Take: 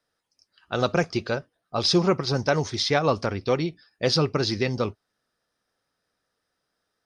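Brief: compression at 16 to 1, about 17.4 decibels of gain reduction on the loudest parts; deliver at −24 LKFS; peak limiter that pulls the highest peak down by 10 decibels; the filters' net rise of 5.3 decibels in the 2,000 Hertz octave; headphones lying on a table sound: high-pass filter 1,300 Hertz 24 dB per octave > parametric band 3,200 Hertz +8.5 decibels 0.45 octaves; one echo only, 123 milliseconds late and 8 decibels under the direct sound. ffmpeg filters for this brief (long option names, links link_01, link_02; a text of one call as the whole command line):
ffmpeg -i in.wav -af "equalizer=frequency=2000:width_type=o:gain=6.5,acompressor=threshold=-33dB:ratio=16,alimiter=level_in=3.5dB:limit=-24dB:level=0:latency=1,volume=-3.5dB,highpass=frequency=1300:width=0.5412,highpass=frequency=1300:width=1.3066,equalizer=frequency=3200:width_type=o:width=0.45:gain=8.5,aecho=1:1:123:0.398,volume=17dB" out.wav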